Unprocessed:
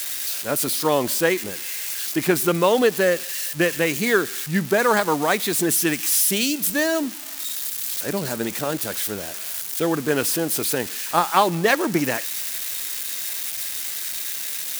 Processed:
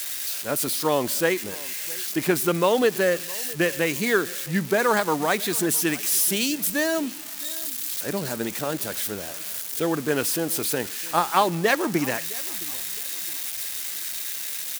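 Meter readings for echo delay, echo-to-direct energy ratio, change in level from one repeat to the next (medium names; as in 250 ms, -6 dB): 663 ms, -20.5 dB, -9.5 dB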